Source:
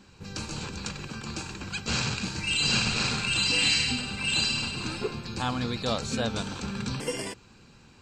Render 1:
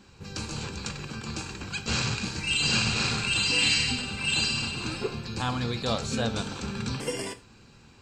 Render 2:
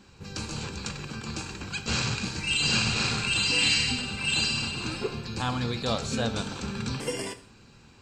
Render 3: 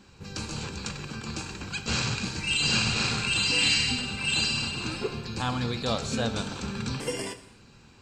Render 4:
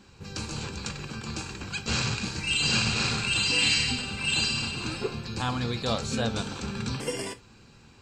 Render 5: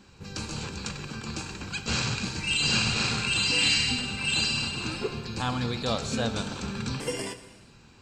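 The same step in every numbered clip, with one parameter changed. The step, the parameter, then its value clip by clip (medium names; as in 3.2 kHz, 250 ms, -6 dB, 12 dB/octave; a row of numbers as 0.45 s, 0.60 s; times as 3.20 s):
gated-style reverb, gate: 130 ms, 200 ms, 300 ms, 90 ms, 450 ms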